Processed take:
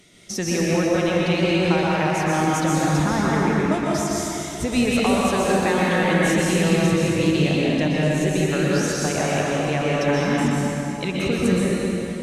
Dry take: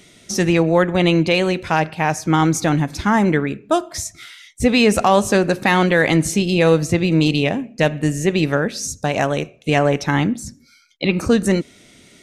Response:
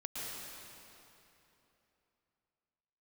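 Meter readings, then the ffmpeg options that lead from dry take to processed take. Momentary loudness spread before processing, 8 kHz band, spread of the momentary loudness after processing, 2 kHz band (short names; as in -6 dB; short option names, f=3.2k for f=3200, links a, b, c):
8 LU, -1.0 dB, 5 LU, -3.0 dB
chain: -filter_complex "[0:a]acompressor=threshold=-16dB:ratio=6[a];[1:a]atrim=start_sample=2205,asetrate=39690,aresample=44100[b];[a][b]afir=irnorm=-1:irlink=0,volume=-1dB"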